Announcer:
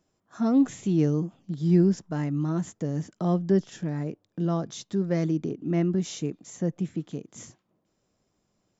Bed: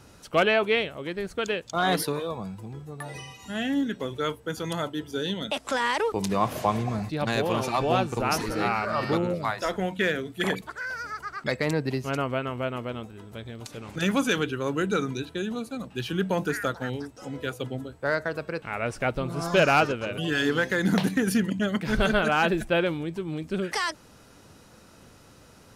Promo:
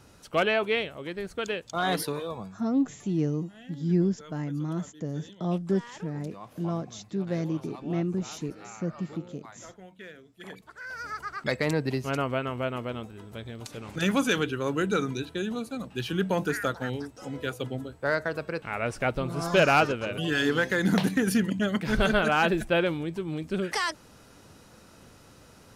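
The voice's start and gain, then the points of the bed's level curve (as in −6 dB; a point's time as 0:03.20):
2.20 s, −4.0 dB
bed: 0:02.42 −3 dB
0:02.69 −20 dB
0:10.36 −20 dB
0:11.09 −0.5 dB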